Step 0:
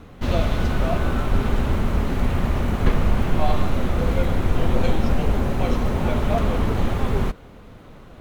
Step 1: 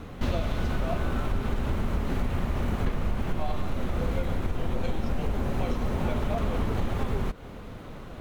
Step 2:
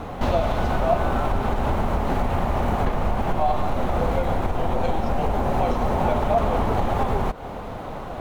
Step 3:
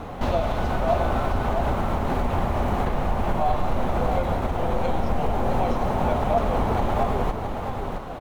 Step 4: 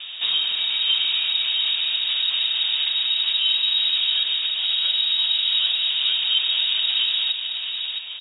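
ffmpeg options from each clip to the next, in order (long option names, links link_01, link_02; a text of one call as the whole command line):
ffmpeg -i in.wav -af "acompressor=threshold=-26dB:ratio=6,volume=2.5dB" out.wav
ffmpeg -i in.wav -filter_complex "[0:a]equalizer=frequency=780:width_type=o:width=1.1:gain=12.5,asplit=2[link_01][link_02];[link_02]alimiter=limit=-20.5dB:level=0:latency=1:release=199,volume=-2dB[link_03];[link_01][link_03]amix=inputs=2:normalize=0" out.wav
ffmpeg -i in.wav -af "aecho=1:1:666:0.501,volume=-2dB" out.wav
ffmpeg -i in.wav -af "lowpass=frequency=3200:width_type=q:width=0.5098,lowpass=frequency=3200:width_type=q:width=0.6013,lowpass=frequency=3200:width_type=q:width=0.9,lowpass=frequency=3200:width_type=q:width=2.563,afreqshift=-3800" out.wav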